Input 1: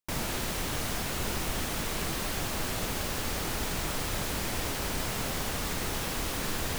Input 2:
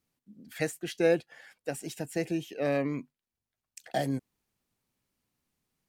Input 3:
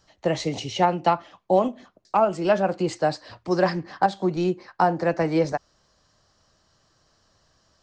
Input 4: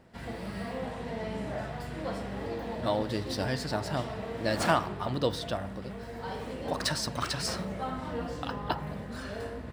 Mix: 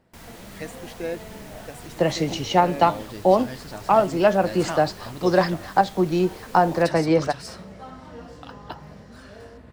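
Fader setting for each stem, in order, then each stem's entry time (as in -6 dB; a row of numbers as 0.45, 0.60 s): -13.0, -5.5, +2.5, -5.5 dB; 0.05, 0.00, 1.75, 0.00 s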